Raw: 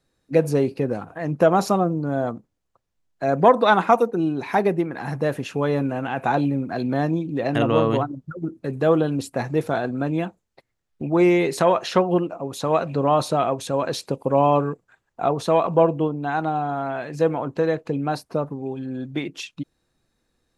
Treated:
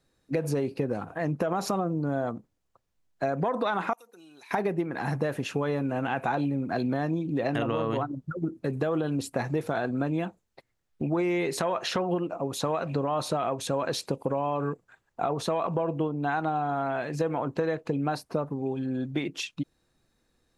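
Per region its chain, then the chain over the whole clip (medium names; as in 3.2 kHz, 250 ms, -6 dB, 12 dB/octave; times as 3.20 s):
3.93–4.51 s: differentiator + compression 5:1, threshold -48 dBFS
whole clip: dynamic bell 1.6 kHz, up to +3 dB, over -28 dBFS, Q 0.71; peak limiter -11.5 dBFS; compression, threshold -24 dBFS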